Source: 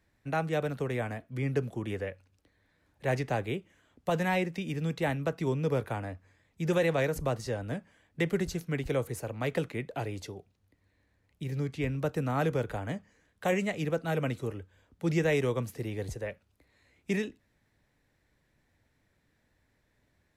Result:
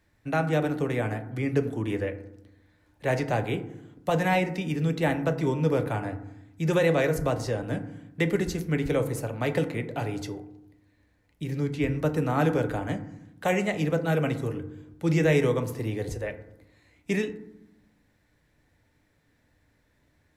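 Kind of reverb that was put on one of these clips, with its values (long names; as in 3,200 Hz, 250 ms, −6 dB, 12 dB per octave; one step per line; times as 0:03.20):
feedback delay network reverb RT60 0.84 s, low-frequency decay 1.55×, high-frequency decay 0.35×, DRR 7.5 dB
level +3.5 dB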